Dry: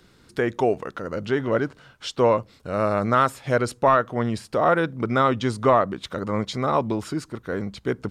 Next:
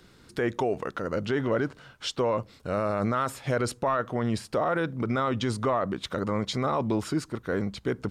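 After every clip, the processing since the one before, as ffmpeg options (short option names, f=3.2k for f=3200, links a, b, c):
-af "alimiter=limit=-17.5dB:level=0:latency=1:release=34"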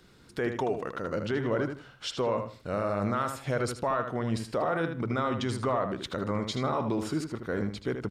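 -filter_complex "[0:a]asplit=2[a][b];[b]adelay=78,lowpass=f=4.9k:p=1,volume=-7dB,asplit=2[c][d];[d]adelay=78,lowpass=f=4.9k:p=1,volume=0.24,asplit=2[e][f];[f]adelay=78,lowpass=f=4.9k:p=1,volume=0.24[g];[a][c][e][g]amix=inputs=4:normalize=0,volume=-3dB"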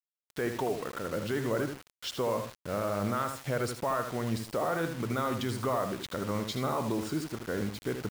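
-af "acrusher=bits=6:mix=0:aa=0.000001,volume=-2dB"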